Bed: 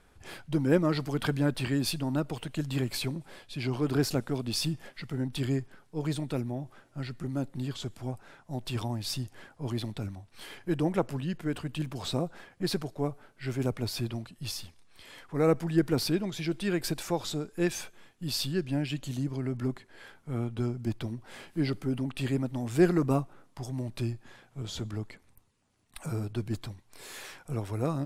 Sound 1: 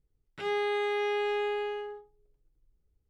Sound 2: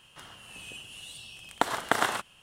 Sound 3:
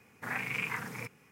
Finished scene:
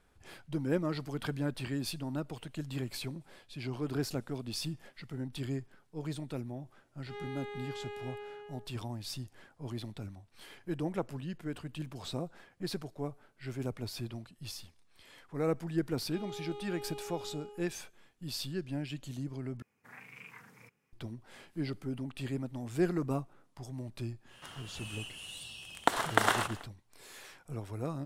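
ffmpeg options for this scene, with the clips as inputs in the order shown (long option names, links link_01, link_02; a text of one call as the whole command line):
ffmpeg -i bed.wav -i cue0.wav -i cue1.wav -i cue2.wav -filter_complex "[1:a]asplit=2[link_01][link_02];[0:a]volume=-7dB[link_03];[link_02]asuperstop=centerf=1800:order=4:qfactor=1.4[link_04];[2:a]aecho=1:1:217|434|651|868|1085:0.119|0.0642|0.0347|0.0187|0.0101[link_05];[link_03]asplit=2[link_06][link_07];[link_06]atrim=end=19.624[link_08];[3:a]atrim=end=1.31,asetpts=PTS-STARTPTS,volume=-16.5dB[link_09];[link_07]atrim=start=20.926[link_10];[link_01]atrim=end=3.09,asetpts=PTS-STARTPTS,volume=-13.5dB,afade=type=in:duration=0.004:curve=hsin,afade=type=out:start_time=3.086:duration=0.004:curve=hsin,adelay=6680[link_11];[link_04]atrim=end=3.09,asetpts=PTS-STARTPTS,volume=-14dB,afade=type=in:duration=0.004:curve=hsin,afade=type=out:start_time=3.086:duration=0.004:curve=hsin,adelay=693252S[link_12];[link_05]atrim=end=2.42,asetpts=PTS-STARTPTS,volume=-1dB,afade=type=in:duration=0.1,afade=type=out:start_time=2.32:duration=0.1,adelay=24260[link_13];[link_08][link_09]acrossfade=duration=0.004:curve1=hsin:curve2=hsin[link_14];[link_14][link_10]acrossfade=duration=0.004:curve1=hsin:curve2=hsin[link_15];[link_15][link_11][link_12][link_13]amix=inputs=4:normalize=0" out.wav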